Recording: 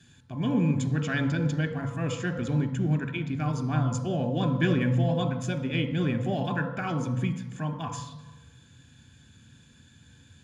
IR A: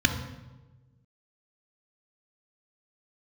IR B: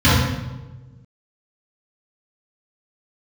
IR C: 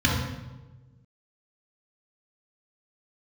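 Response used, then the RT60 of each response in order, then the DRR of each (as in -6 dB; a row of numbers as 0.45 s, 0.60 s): A; 1.2 s, 1.2 s, 1.2 s; 6.5 dB, -12.5 dB, -2.5 dB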